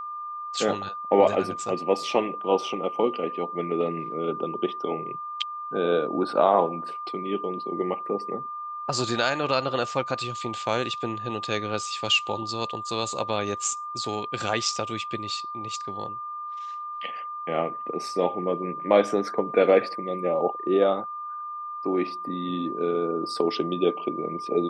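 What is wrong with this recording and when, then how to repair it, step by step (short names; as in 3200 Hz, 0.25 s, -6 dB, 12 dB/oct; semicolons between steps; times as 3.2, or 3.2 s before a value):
tone 1200 Hz -32 dBFS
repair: notch 1200 Hz, Q 30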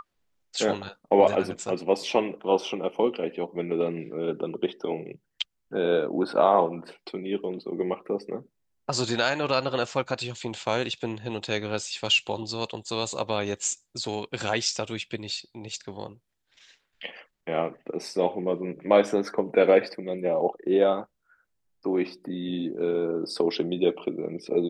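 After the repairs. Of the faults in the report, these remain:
none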